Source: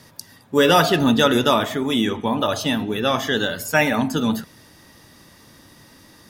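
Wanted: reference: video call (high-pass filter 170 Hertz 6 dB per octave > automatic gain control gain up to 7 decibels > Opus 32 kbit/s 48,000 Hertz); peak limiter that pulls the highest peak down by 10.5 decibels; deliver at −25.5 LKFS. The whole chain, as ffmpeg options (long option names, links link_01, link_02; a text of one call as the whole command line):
ffmpeg -i in.wav -af "alimiter=limit=-13.5dB:level=0:latency=1,highpass=frequency=170:poles=1,dynaudnorm=maxgain=7dB,volume=-1dB" -ar 48000 -c:a libopus -b:a 32k out.opus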